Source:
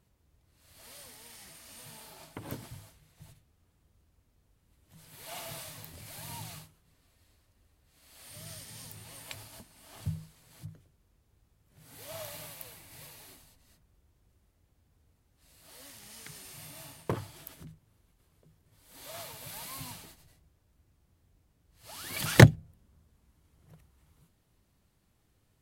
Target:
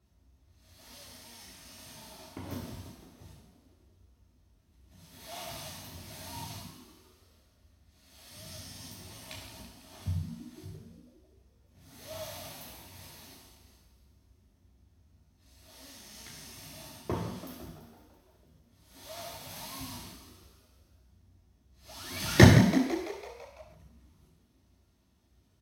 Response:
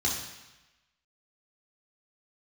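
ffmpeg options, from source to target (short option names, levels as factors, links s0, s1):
-filter_complex "[0:a]asplit=8[s0][s1][s2][s3][s4][s5][s6][s7];[s1]adelay=167,afreqshift=72,volume=0.282[s8];[s2]adelay=334,afreqshift=144,volume=0.164[s9];[s3]adelay=501,afreqshift=216,volume=0.0944[s10];[s4]adelay=668,afreqshift=288,volume=0.055[s11];[s5]adelay=835,afreqshift=360,volume=0.032[s12];[s6]adelay=1002,afreqshift=432,volume=0.0184[s13];[s7]adelay=1169,afreqshift=504,volume=0.0107[s14];[s0][s8][s9][s10][s11][s12][s13][s14]amix=inputs=8:normalize=0[s15];[1:a]atrim=start_sample=2205,atrim=end_sample=6174,asetrate=38808,aresample=44100[s16];[s15][s16]afir=irnorm=-1:irlink=0,volume=0.335"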